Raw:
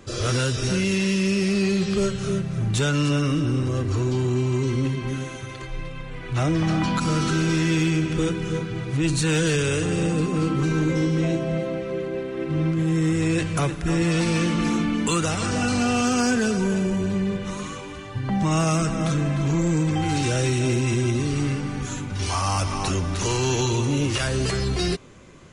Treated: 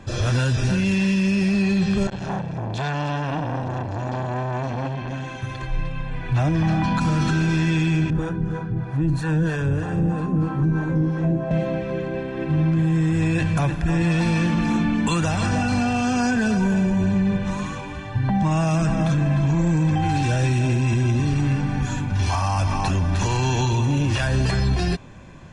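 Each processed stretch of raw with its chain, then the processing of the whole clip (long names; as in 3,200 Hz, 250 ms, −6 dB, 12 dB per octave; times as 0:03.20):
0:02.07–0:05.42: low-pass filter 6,600 Hz + low-shelf EQ 130 Hz −8 dB + saturating transformer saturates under 1,000 Hz
0:08.10–0:11.51: flat-topped bell 4,400 Hz −12 dB 2.5 octaves + two-band tremolo in antiphase 3.1 Hz, crossover 470 Hz
whole clip: low-pass filter 2,600 Hz 6 dB per octave; comb filter 1.2 ms, depth 53%; brickwall limiter −17.5 dBFS; level +4 dB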